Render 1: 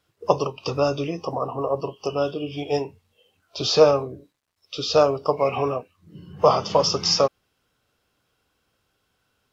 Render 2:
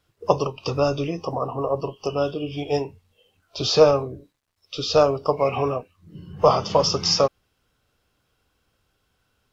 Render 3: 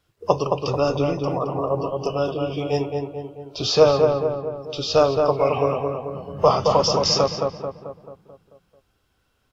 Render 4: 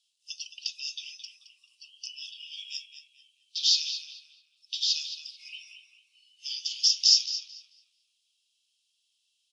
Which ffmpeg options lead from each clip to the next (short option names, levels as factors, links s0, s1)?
-af "lowshelf=f=76:g=11"
-filter_complex "[0:a]asplit=2[s0][s1];[s1]adelay=219,lowpass=f=1800:p=1,volume=0.668,asplit=2[s2][s3];[s3]adelay=219,lowpass=f=1800:p=1,volume=0.54,asplit=2[s4][s5];[s5]adelay=219,lowpass=f=1800:p=1,volume=0.54,asplit=2[s6][s7];[s7]adelay=219,lowpass=f=1800:p=1,volume=0.54,asplit=2[s8][s9];[s9]adelay=219,lowpass=f=1800:p=1,volume=0.54,asplit=2[s10][s11];[s11]adelay=219,lowpass=f=1800:p=1,volume=0.54,asplit=2[s12][s13];[s13]adelay=219,lowpass=f=1800:p=1,volume=0.54[s14];[s0][s2][s4][s6][s8][s10][s12][s14]amix=inputs=8:normalize=0"
-af "asuperpass=centerf=5700:order=12:qfactor=0.78,volume=1.26"